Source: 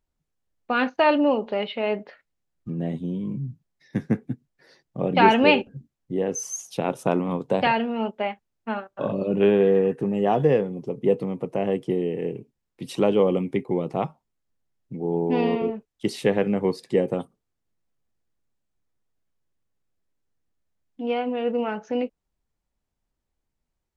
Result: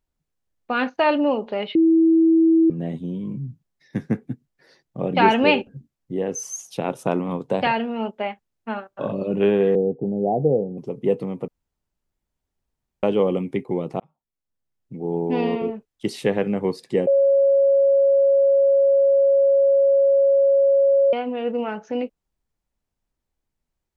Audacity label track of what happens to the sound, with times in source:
1.750000	2.700000	beep over 326 Hz −12 dBFS
9.750000	10.780000	Butterworth low-pass 800 Hz 72 dB per octave
11.480000	13.030000	fill with room tone
14.000000	15.070000	fade in
17.070000	21.130000	beep over 552 Hz −13 dBFS

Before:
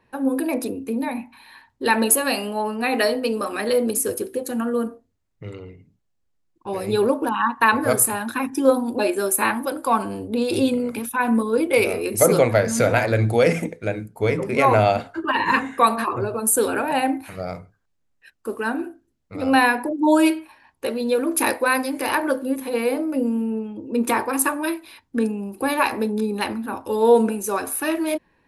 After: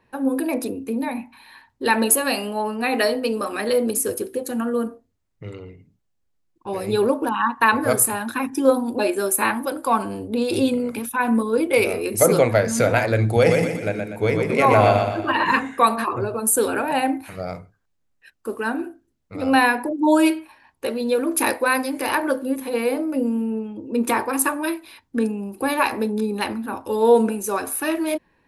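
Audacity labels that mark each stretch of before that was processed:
13.240000	15.470000	repeating echo 121 ms, feedback 45%, level −4.5 dB

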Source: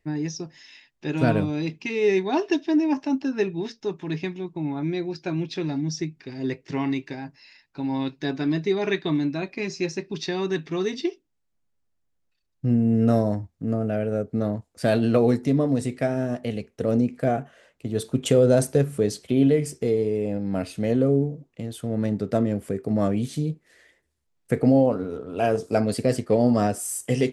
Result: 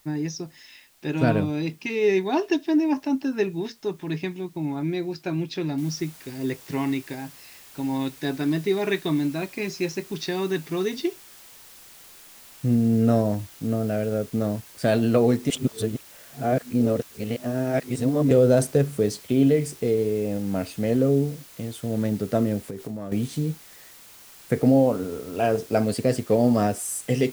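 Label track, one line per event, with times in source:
5.780000	5.780000	noise floor change −60 dB −48 dB
15.500000	18.310000	reverse
22.660000	23.120000	downward compressor 16 to 1, threshold −28 dBFS

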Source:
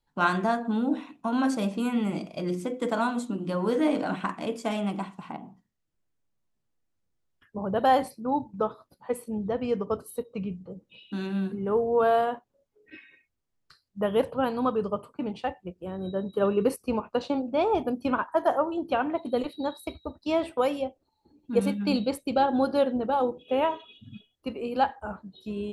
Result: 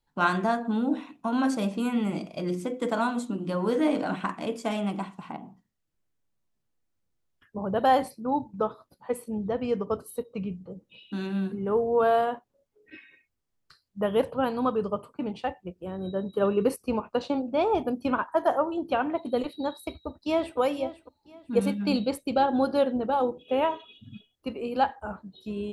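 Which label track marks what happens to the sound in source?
19.770000	20.580000	delay throw 500 ms, feedback 30%, level −14 dB

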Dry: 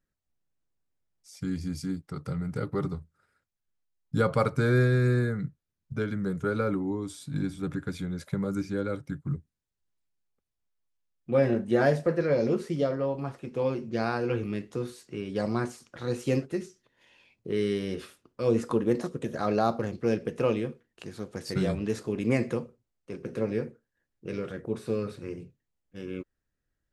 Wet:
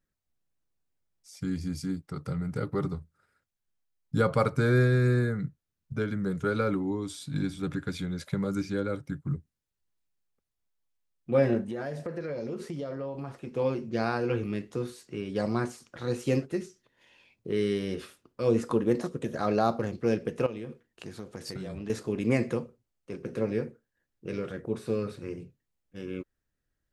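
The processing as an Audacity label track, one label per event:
6.310000	8.800000	parametric band 3,600 Hz +5 dB 1.7 octaves
11.610000	13.500000	downward compressor 5 to 1, threshold −32 dBFS
20.460000	21.900000	downward compressor 12 to 1, threshold −33 dBFS

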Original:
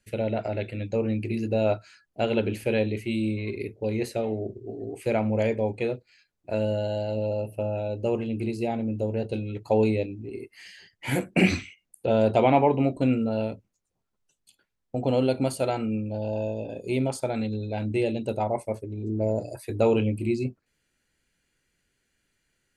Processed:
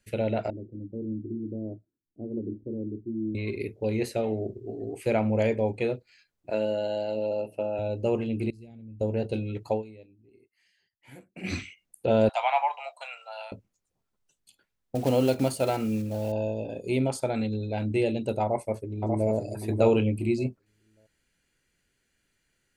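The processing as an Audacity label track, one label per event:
0.500000	3.350000	transistor ladder low-pass 360 Hz, resonance 55%
6.500000	7.790000	band-pass filter 240–7,600 Hz
8.500000	9.010000	guitar amp tone stack bass-middle-treble 10-0-1
9.660000	11.600000	duck −22.5 dB, fades 0.17 s
12.290000	13.520000	Butterworth high-pass 720 Hz 48 dB per octave
14.950000	16.320000	one scale factor per block 5 bits
18.430000	19.290000	delay throw 590 ms, feedback 15%, level −4.5 dB

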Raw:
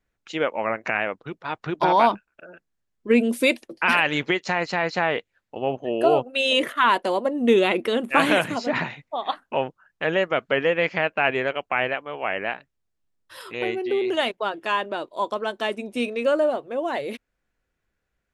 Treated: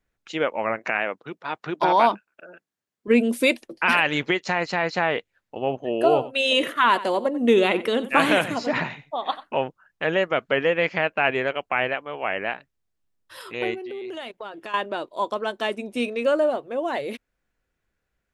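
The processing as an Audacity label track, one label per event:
0.790000	3.080000	Bessel high-pass filter 200 Hz
6.060000	9.570000	single-tap delay 91 ms −15.5 dB
13.740000	14.740000	downward compressor 4 to 1, threshold −33 dBFS

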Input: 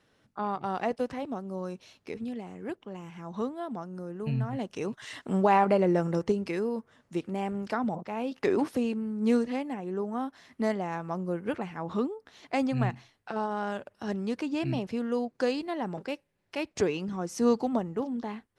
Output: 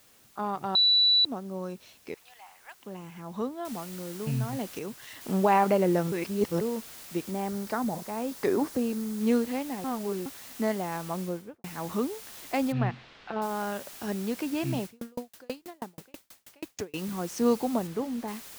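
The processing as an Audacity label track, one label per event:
0.750000	1.250000	beep over 3,950 Hz −18 dBFS
2.140000	2.790000	Chebyshev high-pass filter 800 Hz, order 4
3.650000	3.650000	noise floor change −60 dB −46 dB
4.790000	5.210000	clip gain −4.5 dB
6.120000	6.610000	reverse
7.310000	9.210000	parametric band 2,700 Hz −5.5 dB 0.71 octaves
9.840000	10.260000	reverse
11.190000	11.640000	fade out and dull
12.720000	13.420000	low-pass filter 3,800 Hz 24 dB per octave
14.850000	16.940000	tremolo with a ramp in dB decaying 6.2 Hz, depth 39 dB
17.870000	18.280000	high-shelf EQ 4,800 Hz −8.5 dB

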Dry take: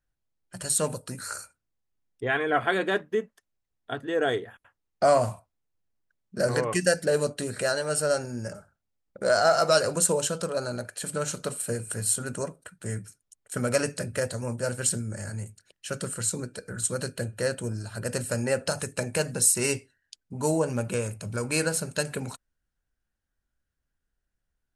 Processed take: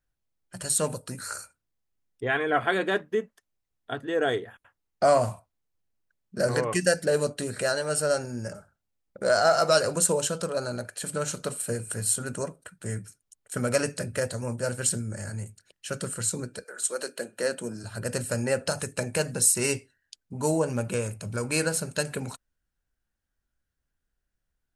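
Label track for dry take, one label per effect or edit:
16.630000	17.830000	high-pass filter 480 Hz → 140 Hz 24 dB per octave

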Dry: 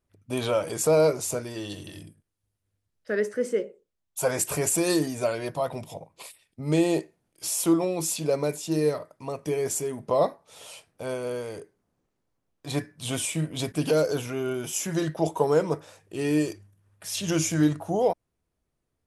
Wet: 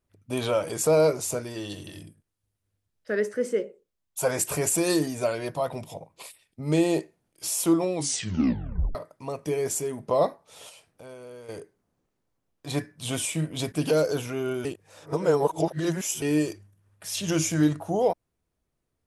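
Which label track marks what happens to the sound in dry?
7.930000	7.930000	tape stop 1.02 s
10.690000	11.490000	downward compressor 2 to 1, threshold −51 dBFS
14.650000	16.220000	reverse

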